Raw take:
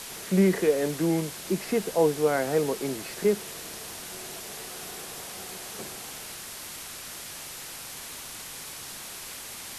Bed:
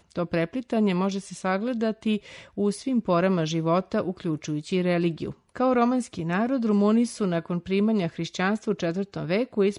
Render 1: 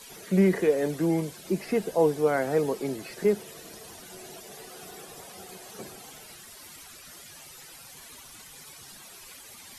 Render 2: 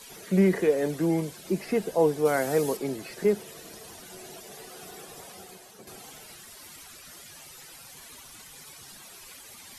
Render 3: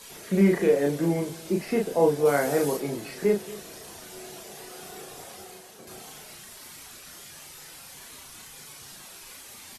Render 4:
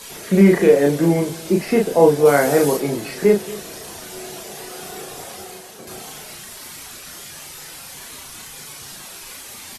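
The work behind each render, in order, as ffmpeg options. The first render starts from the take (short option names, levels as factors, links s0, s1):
-af "afftdn=nr=13:nf=-41"
-filter_complex "[0:a]asettb=1/sr,asplit=3[s0][s1][s2];[s0]atrim=end=2.254[s3];[s1]atrim=start=2.25:end=2.77,asetpts=PTS-STARTPTS,afade=t=in:d=0.004:c=qsin,afade=t=out:st=0.516:d=0.004:c=qsin,highshelf=f=4600:g=10.5[s4];[s2]atrim=start=2.766[s5];[s3][s4]acrossfade=d=0.004:c1=hsin:c2=qsin[s6];[s6][s5]acrossfade=d=0.004:c1=qsin:c2=hsin,asplit=2[s7][s8];[s7]atrim=end=5.87,asetpts=PTS-STARTPTS,afade=t=out:st=5.29:d=0.58:silence=0.316228[s9];[s8]atrim=start=5.87,asetpts=PTS-STARTPTS,afade=t=in:d=0.004:c=hsin:silence=0.316228[s10];[s9][s10]concat=n=2:v=0:a=1"
-filter_complex "[0:a]asplit=2[s0][s1];[s1]adelay=35,volume=0.708[s2];[s0][s2]amix=inputs=2:normalize=0,aecho=1:1:228:0.119"
-af "volume=2.66,alimiter=limit=0.794:level=0:latency=1"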